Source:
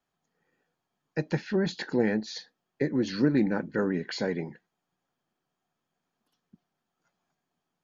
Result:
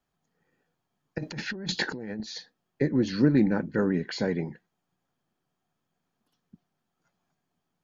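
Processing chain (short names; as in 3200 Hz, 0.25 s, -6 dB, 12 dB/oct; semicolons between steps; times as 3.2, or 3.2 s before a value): low shelf 170 Hz +8.5 dB; 1.18–2.2 negative-ratio compressor -34 dBFS, ratio -1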